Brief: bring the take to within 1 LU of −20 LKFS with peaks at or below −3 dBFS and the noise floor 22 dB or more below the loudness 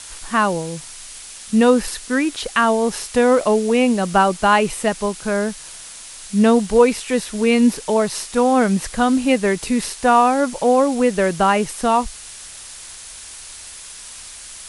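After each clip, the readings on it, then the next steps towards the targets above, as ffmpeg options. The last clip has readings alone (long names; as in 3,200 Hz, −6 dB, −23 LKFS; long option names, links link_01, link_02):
background noise floor −37 dBFS; target noise floor −40 dBFS; integrated loudness −17.5 LKFS; sample peak −2.0 dBFS; target loudness −20.0 LKFS
→ -af "afftdn=noise_reduction=6:noise_floor=-37"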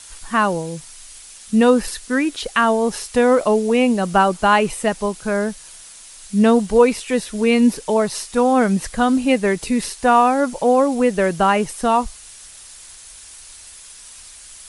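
background noise floor −41 dBFS; integrated loudness −17.5 LKFS; sample peak −2.5 dBFS; target loudness −20.0 LKFS
→ -af "volume=-2.5dB"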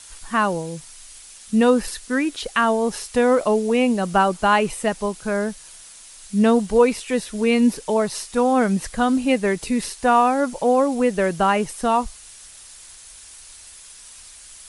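integrated loudness −20.0 LKFS; sample peak −5.0 dBFS; background noise floor −44 dBFS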